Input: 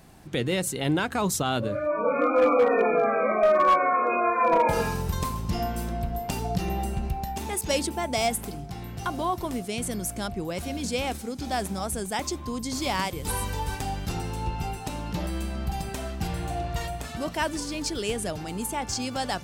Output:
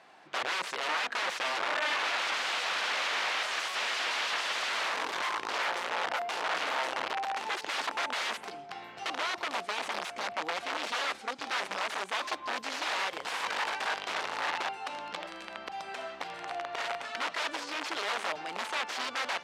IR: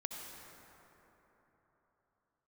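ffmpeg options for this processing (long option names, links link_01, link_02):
-filter_complex "[0:a]asplit=3[link_01][link_02][link_03];[link_01]afade=type=out:start_time=14.68:duration=0.02[link_04];[link_02]acompressor=threshold=-30dB:ratio=8,afade=type=in:start_time=14.68:duration=0.02,afade=type=out:start_time=16.77:duration=0.02[link_05];[link_03]afade=type=in:start_time=16.77:duration=0.02[link_06];[link_04][link_05][link_06]amix=inputs=3:normalize=0,aeval=exprs='(mod(18.8*val(0)+1,2)-1)/18.8':channel_layout=same,highpass=710,lowpass=3300,volume=3dB"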